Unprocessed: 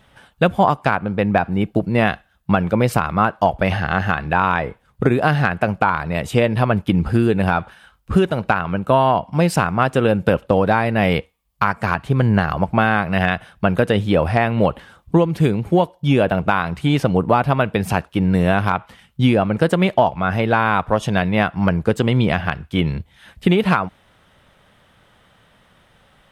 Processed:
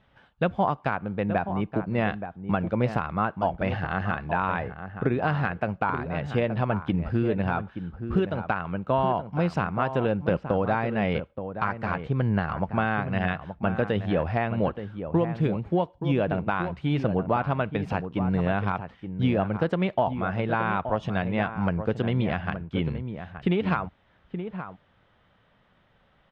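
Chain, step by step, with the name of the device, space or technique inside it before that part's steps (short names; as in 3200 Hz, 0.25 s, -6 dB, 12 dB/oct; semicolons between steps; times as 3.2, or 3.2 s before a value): shout across a valley (air absorption 190 m; outdoor echo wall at 150 m, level -9 dB); gain -8.5 dB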